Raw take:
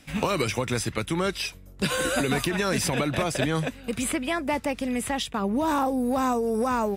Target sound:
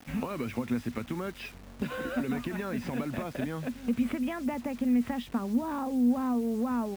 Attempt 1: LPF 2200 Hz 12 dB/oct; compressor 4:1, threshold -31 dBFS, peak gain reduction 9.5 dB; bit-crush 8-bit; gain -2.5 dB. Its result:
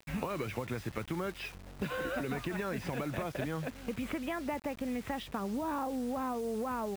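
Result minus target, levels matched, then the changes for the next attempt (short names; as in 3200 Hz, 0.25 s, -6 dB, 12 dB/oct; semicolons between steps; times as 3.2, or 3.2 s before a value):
250 Hz band -3.5 dB
add after compressor: bell 240 Hz +14.5 dB 0.25 oct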